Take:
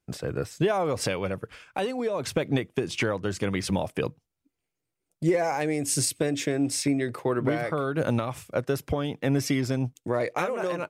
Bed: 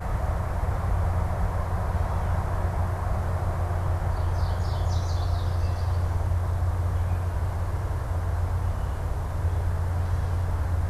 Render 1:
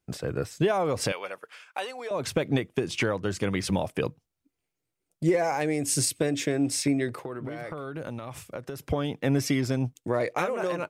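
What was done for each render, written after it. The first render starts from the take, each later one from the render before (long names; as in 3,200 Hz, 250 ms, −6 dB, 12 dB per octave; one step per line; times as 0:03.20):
0:01.12–0:02.11: high-pass filter 720 Hz
0:07.09–0:08.82: downward compressor, threshold −32 dBFS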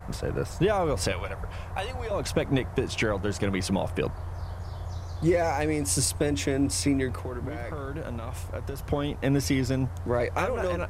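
mix in bed −10 dB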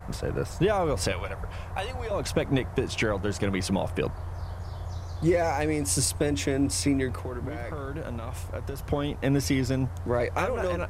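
no processing that can be heard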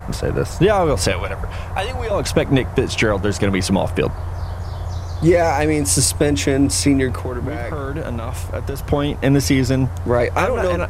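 level +9.5 dB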